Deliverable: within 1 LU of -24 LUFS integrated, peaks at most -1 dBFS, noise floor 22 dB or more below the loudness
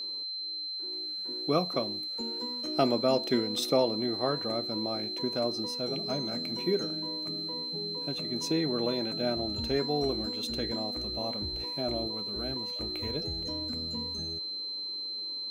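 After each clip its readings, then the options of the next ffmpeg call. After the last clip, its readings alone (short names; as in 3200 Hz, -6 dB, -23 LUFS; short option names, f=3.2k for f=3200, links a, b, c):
steady tone 4100 Hz; tone level -34 dBFS; loudness -31.0 LUFS; peak -13.0 dBFS; loudness target -24.0 LUFS
-> -af "bandreject=f=4.1k:w=30"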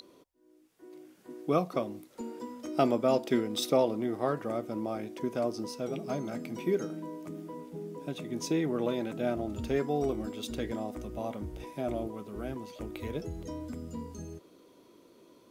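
steady tone none; loudness -33.5 LUFS; peak -13.5 dBFS; loudness target -24.0 LUFS
-> -af "volume=9.5dB"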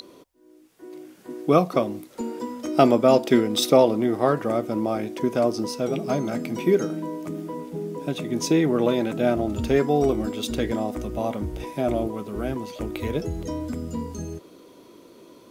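loudness -24.0 LUFS; peak -4.0 dBFS; noise floor -51 dBFS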